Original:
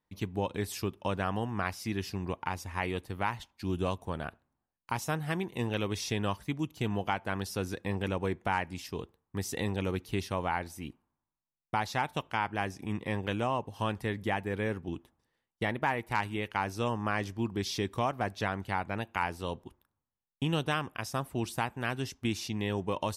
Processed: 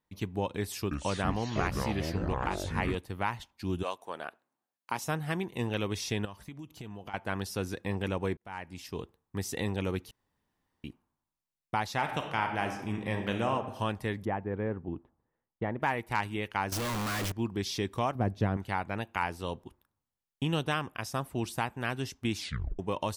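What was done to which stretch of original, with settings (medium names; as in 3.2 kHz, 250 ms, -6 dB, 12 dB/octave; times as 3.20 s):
0.59–2.95 s: ever faster or slower copies 321 ms, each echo -6 st, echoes 3
3.82–5.02 s: high-pass 580 Hz -> 190 Hz
6.25–7.14 s: compression 10:1, threshold -39 dBFS
8.37–8.98 s: fade in
10.11–10.84 s: room tone
11.94–13.52 s: reverb throw, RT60 1 s, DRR 4.5 dB
14.25–15.80 s: low-pass 1.2 kHz
16.72–17.32 s: one-bit comparator
18.15–18.57 s: tilt shelf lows +9.5 dB, about 630 Hz
22.37 s: tape stop 0.42 s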